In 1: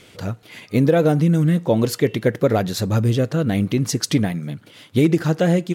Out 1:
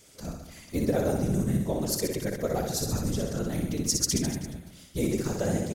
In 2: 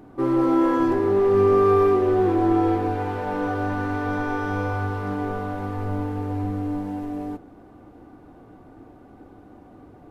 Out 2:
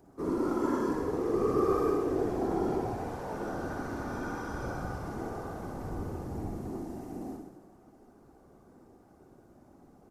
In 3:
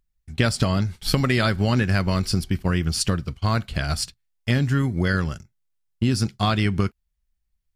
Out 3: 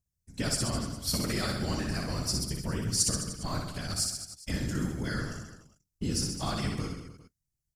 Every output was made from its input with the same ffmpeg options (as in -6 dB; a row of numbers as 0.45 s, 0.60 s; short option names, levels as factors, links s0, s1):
-af "afftfilt=real='hypot(re,im)*cos(2*PI*random(0))':imag='hypot(re,im)*sin(2*PI*random(1))':win_size=512:overlap=0.75,highshelf=f=4400:t=q:w=1.5:g=10,aecho=1:1:60|129|208.4|299.6|404.5:0.631|0.398|0.251|0.158|0.1,volume=0.473"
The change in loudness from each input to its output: -9.5 LU, -10.5 LU, -8.5 LU